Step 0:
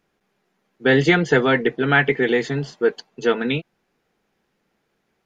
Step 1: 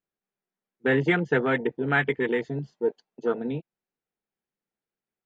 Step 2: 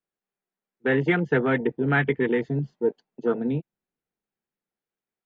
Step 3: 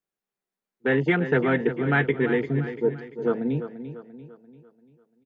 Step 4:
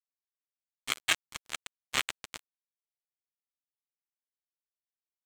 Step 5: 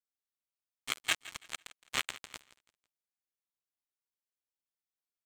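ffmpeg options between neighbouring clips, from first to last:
ffmpeg -i in.wav -af "afwtdn=0.0794,volume=-6.5dB" out.wav
ffmpeg -i in.wav -filter_complex "[0:a]bass=frequency=250:gain=-3,treble=frequency=4000:gain=-7,acrossover=split=280|730[link_01][link_02][link_03];[link_01]dynaudnorm=framelen=230:gausssize=11:maxgain=9dB[link_04];[link_04][link_02][link_03]amix=inputs=3:normalize=0" out.wav
ffmpeg -i in.wav -af "aecho=1:1:343|686|1029|1372|1715:0.282|0.127|0.0571|0.0257|0.0116" out.wav
ffmpeg -i in.wav -af "highpass=frequency=2700:width_type=q:width=13,aeval=exprs='val(0)*sin(2*PI*480*n/s)':channel_layout=same,acrusher=bits=2:mix=0:aa=0.5" out.wav
ffmpeg -i in.wav -af "aecho=1:1:166|332|498:0.133|0.0427|0.0137,volume=-3.5dB" out.wav

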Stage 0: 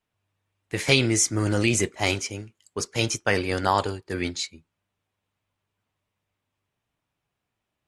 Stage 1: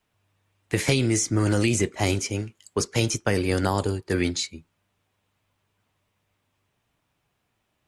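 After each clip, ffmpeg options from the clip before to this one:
ffmpeg -i in.wav -filter_complex "[0:a]acrossover=split=430|7100[link_01][link_02][link_03];[link_01]acompressor=threshold=-28dB:ratio=4[link_04];[link_02]acompressor=threshold=-36dB:ratio=4[link_05];[link_03]acompressor=threshold=-42dB:ratio=4[link_06];[link_04][link_05][link_06]amix=inputs=3:normalize=0,volume=7.5dB" out.wav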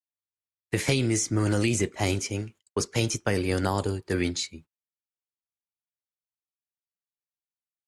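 ffmpeg -i in.wav -af "agate=range=-39dB:threshold=-45dB:ratio=16:detection=peak,volume=-2.5dB" out.wav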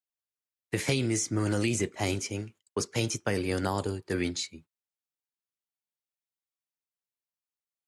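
ffmpeg -i in.wav -af "highpass=85,volume=-3dB" out.wav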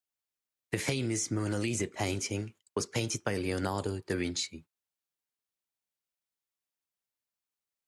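ffmpeg -i in.wav -af "acompressor=threshold=-29dB:ratio=6,volume=1.5dB" out.wav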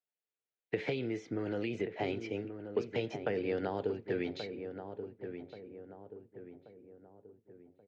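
ffmpeg -i in.wav -filter_complex "[0:a]highpass=140,equalizer=frequency=450:width_type=q:width=4:gain=9,equalizer=frequency=720:width_type=q:width=4:gain=4,equalizer=frequency=1100:width_type=q:width=4:gain=-8,lowpass=frequency=3400:width=0.5412,lowpass=frequency=3400:width=1.3066,asplit=2[link_01][link_02];[link_02]adelay=1131,lowpass=frequency=1300:poles=1,volume=-8dB,asplit=2[link_03][link_04];[link_04]adelay=1131,lowpass=frequency=1300:poles=1,volume=0.47,asplit=2[link_05][link_06];[link_06]adelay=1131,lowpass=frequency=1300:poles=1,volume=0.47,asplit=2[link_07][link_08];[link_08]adelay=1131,lowpass=frequency=1300:poles=1,volume=0.47,asplit=2[link_09][link_10];[link_10]adelay=1131,lowpass=frequency=1300:poles=1,volume=0.47[link_11];[link_01][link_03][link_05][link_07][link_09][link_11]amix=inputs=6:normalize=0,volume=-4.5dB" out.wav

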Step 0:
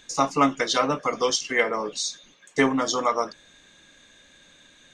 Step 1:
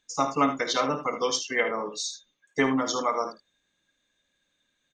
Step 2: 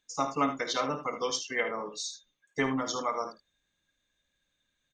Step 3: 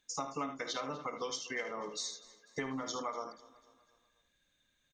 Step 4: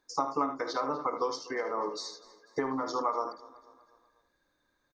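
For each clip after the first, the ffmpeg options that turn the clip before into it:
ffmpeg -i in.wav -filter_complex "[0:a]afftdn=noise_reduction=18:noise_floor=-37,asplit=2[link_01][link_02];[link_02]aecho=0:1:53|76:0.224|0.299[link_03];[link_01][link_03]amix=inputs=2:normalize=0,volume=-3.5dB" out.wav
ffmpeg -i in.wav -af "asubboost=boost=2.5:cutoff=150,volume=-4.5dB" out.wav
ffmpeg -i in.wav -af "acompressor=threshold=-39dB:ratio=4,aecho=1:1:246|492|738|984:0.1|0.047|0.0221|0.0104,volume=2dB" out.wav
ffmpeg -i in.wav -af "firequalizer=gain_entry='entry(220,0);entry(310,10);entry(650,6);entry(930,12);entry(3000,-14);entry(4600,5);entry(6800,-8);entry(11000,-1)':delay=0.05:min_phase=1" out.wav

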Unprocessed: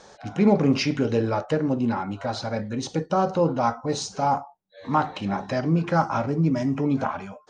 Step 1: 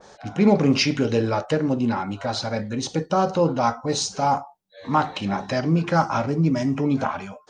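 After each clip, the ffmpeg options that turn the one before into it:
ffmpeg -i in.wav -af "adynamicequalizer=threshold=0.0141:dfrequency=2100:dqfactor=0.7:tfrequency=2100:tqfactor=0.7:attack=5:release=100:ratio=0.375:range=2.5:mode=boostabove:tftype=highshelf,volume=1.5dB" out.wav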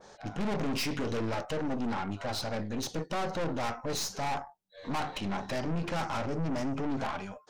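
ffmpeg -i in.wav -af "aeval=exprs='(tanh(25.1*val(0)+0.65)-tanh(0.65))/25.1':channel_layout=same,volume=-2dB" out.wav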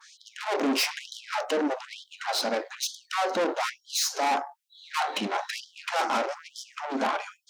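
ffmpeg -i in.wav -af "afftfilt=real='re*gte(b*sr/1024,200*pow(3100/200,0.5+0.5*sin(2*PI*1.1*pts/sr)))':imag='im*gte(b*sr/1024,200*pow(3100/200,0.5+0.5*sin(2*PI*1.1*pts/sr)))':win_size=1024:overlap=0.75,volume=8dB" out.wav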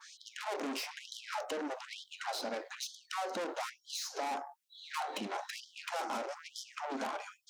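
ffmpeg -i in.wav -filter_complex "[0:a]acrossover=split=810|6600[link_01][link_02][link_03];[link_01]acompressor=threshold=-38dB:ratio=4[link_04];[link_02]acompressor=threshold=-41dB:ratio=4[link_05];[link_03]acompressor=threshold=-49dB:ratio=4[link_06];[link_04][link_05][link_06]amix=inputs=3:normalize=0,volume=-1.5dB" out.wav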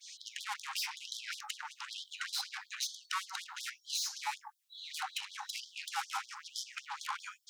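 ffmpeg -i in.wav -af "afftfilt=real='re*gte(b*sr/1024,750*pow(3300/750,0.5+0.5*sin(2*PI*5.3*pts/sr)))':imag='im*gte(b*sr/1024,750*pow(3300/750,0.5+0.5*sin(2*PI*5.3*pts/sr)))':win_size=1024:overlap=0.75,volume=4.5dB" out.wav

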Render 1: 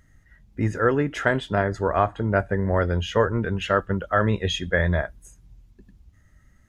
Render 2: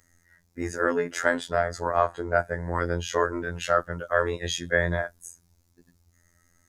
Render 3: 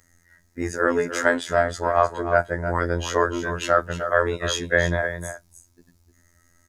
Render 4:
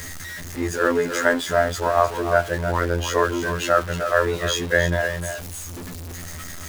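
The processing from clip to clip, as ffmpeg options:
ffmpeg -i in.wav -af "afftfilt=real='hypot(re,im)*cos(PI*b)':imag='0':win_size=2048:overlap=0.75,aexciter=amount=9.5:drive=4.9:freq=4500,bass=frequency=250:gain=-9,treble=frequency=4000:gain=-13,volume=2dB" out.wav
ffmpeg -i in.wav -af "aecho=1:1:305:0.316,volume=3.5dB" out.wav
ffmpeg -i in.wav -af "aeval=exprs='val(0)+0.5*0.0376*sgn(val(0))':channel_layout=same" out.wav

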